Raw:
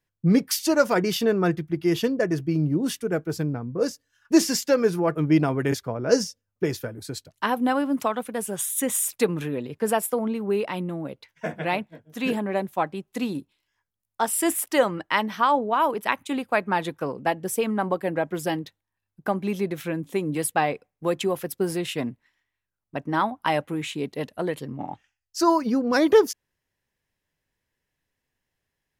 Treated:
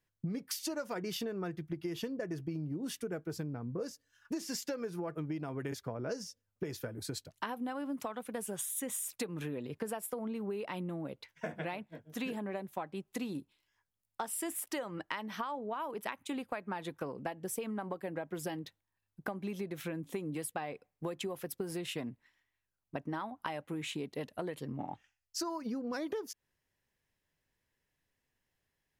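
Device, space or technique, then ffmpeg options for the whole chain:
serial compression, leveller first: -af "acompressor=threshold=0.0794:ratio=2.5,acompressor=threshold=0.0224:ratio=6,volume=0.75"

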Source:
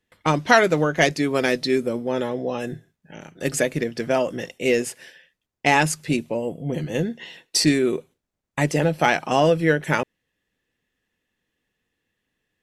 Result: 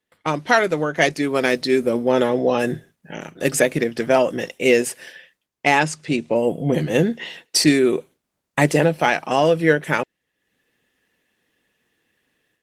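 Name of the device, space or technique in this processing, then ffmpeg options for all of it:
video call: -filter_complex "[0:a]asplit=3[s0][s1][s2];[s0]afade=t=out:st=5.79:d=0.02[s3];[s1]lowpass=f=8000:w=0.5412,lowpass=f=8000:w=1.3066,afade=t=in:st=5.79:d=0.02,afade=t=out:st=6.34:d=0.02[s4];[s2]afade=t=in:st=6.34:d=0.02[s5];[s3][s4][s5]amix=inputs=3:normalize=0,highpass=f=180:p=1,dynaudnorm=f=220:g=3:m=3.98,volume=0.891" -ar 48000 -c:a libopus -b:a 24k

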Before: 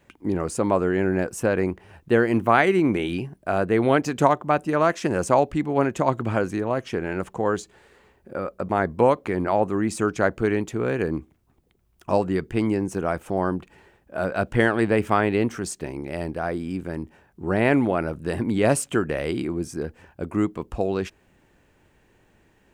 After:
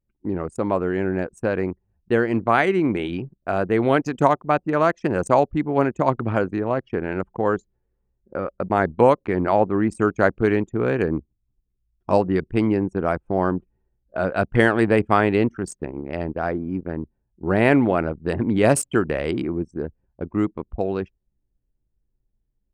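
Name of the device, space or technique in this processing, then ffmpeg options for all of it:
voice memo with heavy noise removal: -af "anlmdn=63.1,dynaudnorm=f=560:g=13:m=3.76,volume=0.891"

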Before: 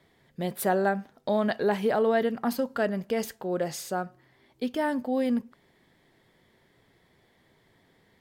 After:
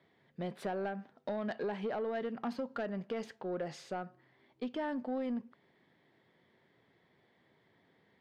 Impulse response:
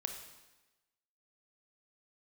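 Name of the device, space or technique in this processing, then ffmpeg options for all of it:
AM radio: -af "highpass=120,lowpass=3600,acompressor=threshold=0.0501:ratio=6,asoftclip=type=tanh:threshold=0.0668,volume=0.562"

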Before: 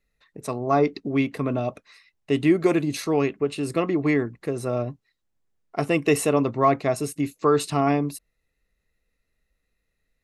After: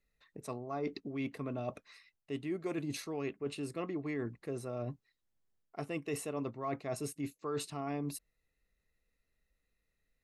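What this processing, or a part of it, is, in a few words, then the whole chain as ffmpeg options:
compression on the reversed sound: -af "areverse,acompressor=threshold=0.0355:ratio=6,areverse,volume=0.501"

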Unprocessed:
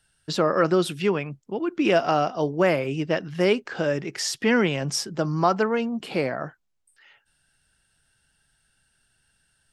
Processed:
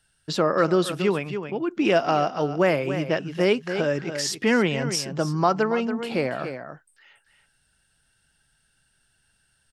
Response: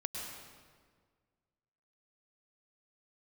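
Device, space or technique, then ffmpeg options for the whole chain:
ducked delay: -filter_complex "[0:a]asplit=3[s0][s1][s2];[s1]adelay=281,volume=0.398[s3];[s2]apad=whole_len=441191[s4];[s3][s4]sidechaincompress=threshold=0.0501:ratio=8:attack=23:release=195[s5];[s0][s5]amix=inputs=2:normalize=0"

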